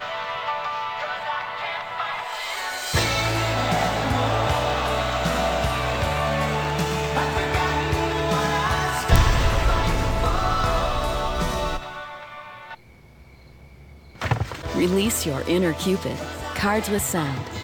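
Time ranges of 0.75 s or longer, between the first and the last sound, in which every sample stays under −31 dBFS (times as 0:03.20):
0:12.74–0:14.22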